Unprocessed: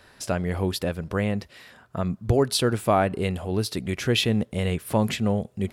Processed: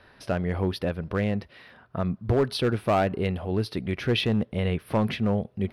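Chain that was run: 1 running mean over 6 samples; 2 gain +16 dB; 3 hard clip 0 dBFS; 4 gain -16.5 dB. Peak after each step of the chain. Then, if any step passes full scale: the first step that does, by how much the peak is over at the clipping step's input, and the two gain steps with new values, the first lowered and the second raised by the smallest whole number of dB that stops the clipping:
-9.0, +7.0, 0.0, -16.5 dBFS; step 2, 7.0 dB; step 2 +9 dB, step 4 -9.5 dB

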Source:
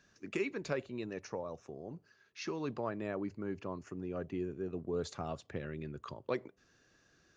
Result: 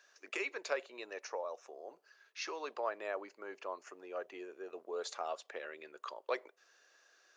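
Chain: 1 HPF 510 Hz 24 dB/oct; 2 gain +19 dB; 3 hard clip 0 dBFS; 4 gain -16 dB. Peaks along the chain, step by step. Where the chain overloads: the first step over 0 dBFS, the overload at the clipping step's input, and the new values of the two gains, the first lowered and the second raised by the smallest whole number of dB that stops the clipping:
-25.0, -6.0, -6.0, -22.0 dBFS; no overload

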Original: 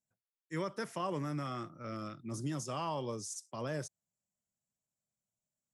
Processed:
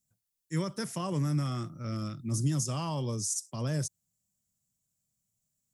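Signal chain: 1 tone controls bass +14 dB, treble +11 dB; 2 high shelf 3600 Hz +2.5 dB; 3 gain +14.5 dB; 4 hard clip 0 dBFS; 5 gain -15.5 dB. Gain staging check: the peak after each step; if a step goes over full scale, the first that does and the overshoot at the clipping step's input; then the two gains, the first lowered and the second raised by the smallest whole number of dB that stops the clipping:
-18.0, -17.0, -2.5, -2.5, -18.0 dBFS; no overload

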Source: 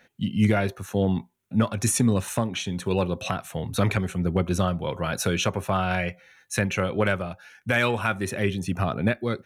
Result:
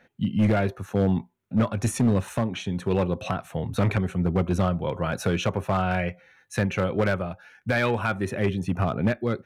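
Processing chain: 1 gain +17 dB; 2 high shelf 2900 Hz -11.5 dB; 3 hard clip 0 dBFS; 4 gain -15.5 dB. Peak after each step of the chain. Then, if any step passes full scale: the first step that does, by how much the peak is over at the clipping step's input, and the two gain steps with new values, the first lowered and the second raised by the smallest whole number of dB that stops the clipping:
+7.5, +7.0, 0.0, -15.5 dBFS; step 1, 7.0 dB; step 1 +10 dB, step 4 -8.5 dB

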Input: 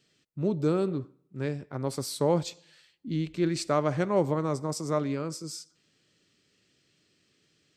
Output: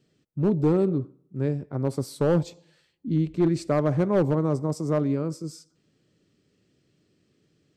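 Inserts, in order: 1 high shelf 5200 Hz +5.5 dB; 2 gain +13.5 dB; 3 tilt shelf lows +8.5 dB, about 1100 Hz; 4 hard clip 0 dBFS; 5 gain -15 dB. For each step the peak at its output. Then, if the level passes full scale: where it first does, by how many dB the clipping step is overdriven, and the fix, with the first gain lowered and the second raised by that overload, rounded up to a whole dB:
-12.0, +1.5, +6.0, 0.0, -15.0 dBFS; step 2, 6.0 dB; step 2 +7.5 dB, step 5 -9 dB

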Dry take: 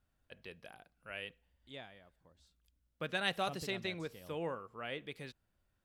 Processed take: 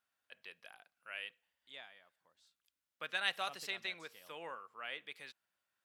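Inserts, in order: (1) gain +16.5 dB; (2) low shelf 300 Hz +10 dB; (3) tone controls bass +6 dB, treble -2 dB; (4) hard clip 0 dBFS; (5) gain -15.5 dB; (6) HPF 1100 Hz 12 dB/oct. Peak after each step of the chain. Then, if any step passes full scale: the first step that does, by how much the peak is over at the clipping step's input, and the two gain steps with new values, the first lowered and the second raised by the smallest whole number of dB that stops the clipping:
-2.0, -3.0, -3.0, -3.0, -18.5, -19.0 dBFS; no overload

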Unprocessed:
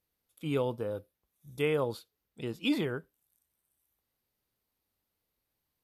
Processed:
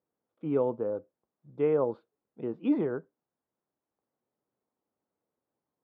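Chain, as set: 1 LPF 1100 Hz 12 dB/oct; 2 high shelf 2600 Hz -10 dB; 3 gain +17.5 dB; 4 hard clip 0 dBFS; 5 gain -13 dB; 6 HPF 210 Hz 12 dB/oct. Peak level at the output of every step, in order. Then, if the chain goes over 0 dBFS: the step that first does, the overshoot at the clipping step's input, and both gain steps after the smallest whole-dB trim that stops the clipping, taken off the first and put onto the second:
-19.5, -19.5, -2.0, -2.0, -15.0, -16.5 dBFS; no overload

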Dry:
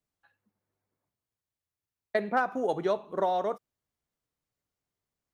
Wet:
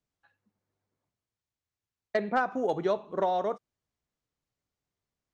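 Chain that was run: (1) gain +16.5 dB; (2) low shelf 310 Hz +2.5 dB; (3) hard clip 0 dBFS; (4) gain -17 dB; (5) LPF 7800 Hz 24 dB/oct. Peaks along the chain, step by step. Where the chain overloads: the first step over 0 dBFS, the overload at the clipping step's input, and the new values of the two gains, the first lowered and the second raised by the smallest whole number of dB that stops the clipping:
+2.5, +3.0, 0.0, -17.0, -16.5 dBFS; step 1, 3.0 dB; step 1 +13.5 dB, step 4 -14 dB

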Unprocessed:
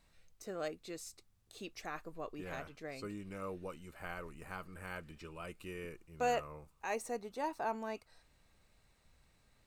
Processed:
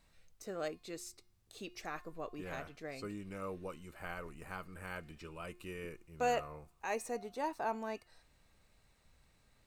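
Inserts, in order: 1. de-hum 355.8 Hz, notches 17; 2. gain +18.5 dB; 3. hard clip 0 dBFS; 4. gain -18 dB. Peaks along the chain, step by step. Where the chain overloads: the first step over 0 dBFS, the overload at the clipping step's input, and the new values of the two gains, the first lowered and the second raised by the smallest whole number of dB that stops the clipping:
-21.5, -3.0, -3.0, -21.0 dBFS; no overload

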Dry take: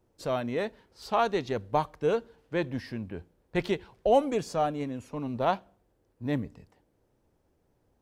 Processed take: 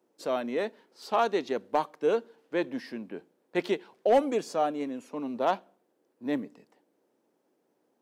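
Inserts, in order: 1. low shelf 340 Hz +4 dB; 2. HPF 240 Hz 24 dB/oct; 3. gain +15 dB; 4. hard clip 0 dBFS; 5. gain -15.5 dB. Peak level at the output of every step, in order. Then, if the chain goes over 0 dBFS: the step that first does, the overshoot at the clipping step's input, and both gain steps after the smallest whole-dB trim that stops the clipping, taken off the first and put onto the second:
-11.5, -11.0, +4.0, 0.0, -15.5 dBFS; step 3, 4.0 dB; step 3 +11 dB, step 5 -11.5 dB

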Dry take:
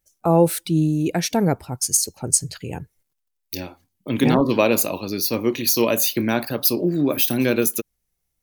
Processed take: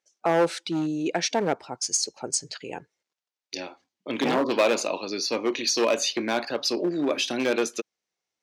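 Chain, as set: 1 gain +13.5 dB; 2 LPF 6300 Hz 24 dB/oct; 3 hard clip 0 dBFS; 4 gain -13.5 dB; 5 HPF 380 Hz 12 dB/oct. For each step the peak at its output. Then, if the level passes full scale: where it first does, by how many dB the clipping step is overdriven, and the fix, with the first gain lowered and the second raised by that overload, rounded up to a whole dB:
+11.0, +9.0, 0.0, -13.5, -9.0 dBFS; step 1, 9.0 dB; step 1 +4.5 dB, step 4 -4.5 dB

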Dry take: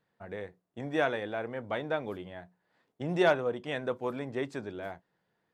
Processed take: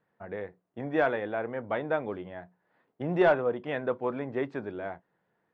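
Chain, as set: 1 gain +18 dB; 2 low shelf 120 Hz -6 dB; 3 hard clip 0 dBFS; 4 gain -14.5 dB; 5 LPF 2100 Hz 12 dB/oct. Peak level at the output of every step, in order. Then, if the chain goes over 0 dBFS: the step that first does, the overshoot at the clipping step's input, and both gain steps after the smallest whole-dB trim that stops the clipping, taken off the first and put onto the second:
+4.5, +5.0, 0.0, -14.5, -14.0 dBFS; step 1, 5.0 dB; step 1 +13 dB, step 4 -9.5 dB

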